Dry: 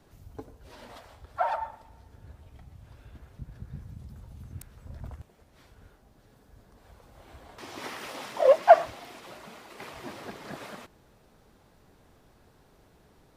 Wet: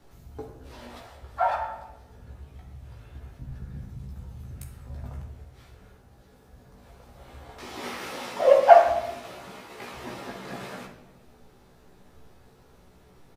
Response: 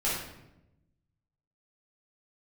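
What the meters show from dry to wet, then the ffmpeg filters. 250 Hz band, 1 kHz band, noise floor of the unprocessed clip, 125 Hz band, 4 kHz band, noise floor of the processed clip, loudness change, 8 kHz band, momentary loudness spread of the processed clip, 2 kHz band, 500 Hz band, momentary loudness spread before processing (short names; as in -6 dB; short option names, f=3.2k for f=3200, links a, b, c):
+4.0 dB, +4.0 dB, -61 dBFS, +4.5 dB, +3.0 dB, -56 dBFS, +3.0 dB, n/a, 26 LU, +3.0 dB, +3.0 dB, 26 LU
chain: -filter_complex "[0:a]asplit=2[a][b];[b]adelay=16,volume=-3dB[c];[a][c]amix=inputs=2:normalize=0,asplit=2[d][e];[1:a]atrim=start_sample=2205[f];[e][f]afir=irnorm=-1:irlink=0,volume=-9.5dB[g];[d][g]amix=inputs=2:normalize=0,volume=-2dB"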